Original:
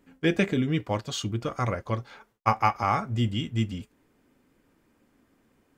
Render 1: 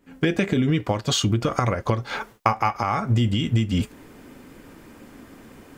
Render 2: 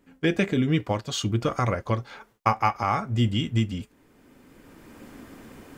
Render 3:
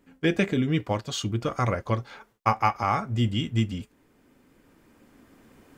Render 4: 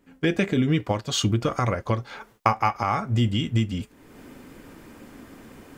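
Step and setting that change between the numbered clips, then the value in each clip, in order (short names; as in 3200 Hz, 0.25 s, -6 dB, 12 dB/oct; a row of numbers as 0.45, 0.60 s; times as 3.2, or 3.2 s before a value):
recorder AGC, rising by: 85, 13, 5.1, 32 dB/s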